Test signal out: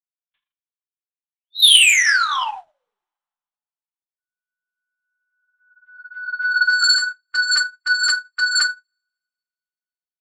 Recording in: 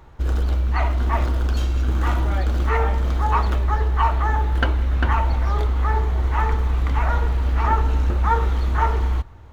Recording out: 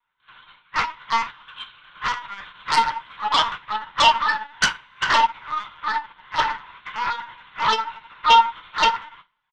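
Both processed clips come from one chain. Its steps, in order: elliptic high-pass 940 Hz, stop band 70 dB; reverse bouncing-ball echo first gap 20 ms, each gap 1.25×, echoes 5; LPC vocoder at 8 kHz pitch kept; sine folder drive 14 dB, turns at -5 dBFS; high shelf 2800 Hz +8.5 dB; two-slope reverb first 0.29 s, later 2.4 s, from -28 dB, DRR 7 dB; upward expander 2.5:1, over -26 dBFS; gain -7 dB

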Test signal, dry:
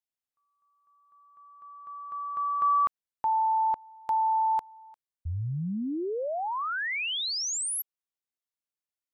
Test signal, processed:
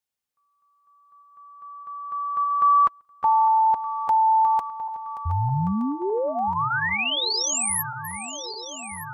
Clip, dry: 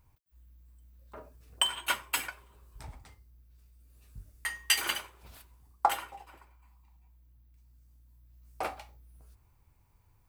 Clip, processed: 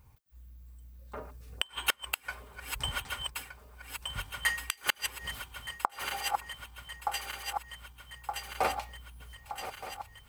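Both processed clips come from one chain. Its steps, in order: regenerating reverse delay 0.61 s, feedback 80%, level -12.5 dB; notch comb 330 Hz; flipped gate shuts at -19 dBFS, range -32 dB; gain +7 dB

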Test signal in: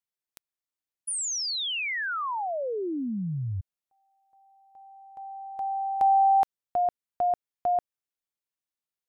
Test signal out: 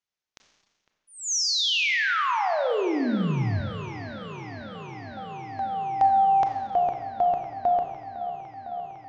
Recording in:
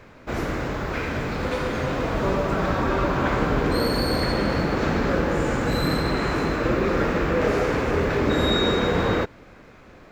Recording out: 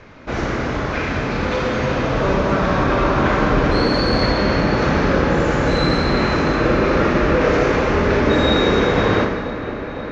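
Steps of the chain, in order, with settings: elliptic low-pass 6400 Hz, stop band 60 dB; dark delay 0.505 s, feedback 82%, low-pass 2700 Hz, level -14.5 dB; Schroeder reverb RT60 1.4 s, combs from 29 ms, DRR 4 dB; gain +5 dB

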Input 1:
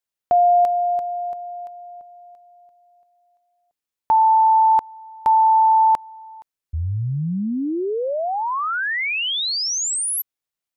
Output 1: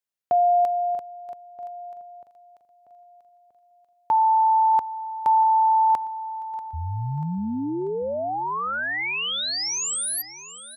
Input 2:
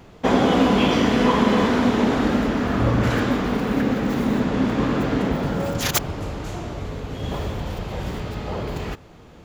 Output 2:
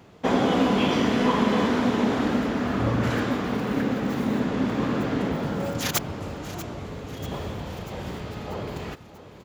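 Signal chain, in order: HPF 78 Hz; feedback echo 0.639 s, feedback 54%, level -15.5 dB; gain -4 dB

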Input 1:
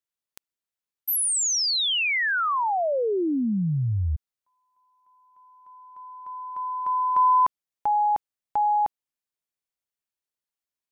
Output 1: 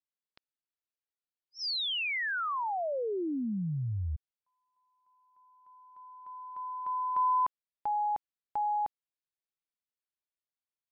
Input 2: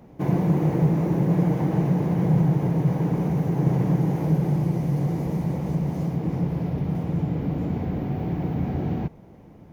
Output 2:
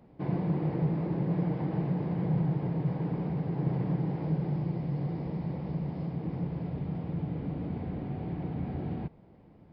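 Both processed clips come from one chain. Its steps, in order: downsampling 11025 Hz; gain -8.5 dB

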